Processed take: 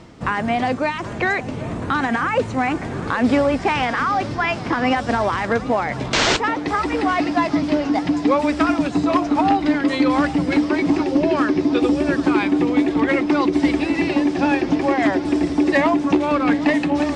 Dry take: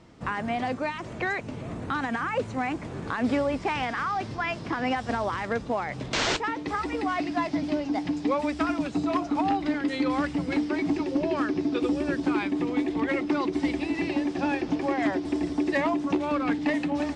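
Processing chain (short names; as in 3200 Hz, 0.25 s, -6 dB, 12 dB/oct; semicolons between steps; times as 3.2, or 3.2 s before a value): reverse; upward compressor, threshold -35 dBFS; reverse; dark delay 0.774 s, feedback 73%, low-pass 2100 Hz, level -16.5 dB; gain +8.5 dB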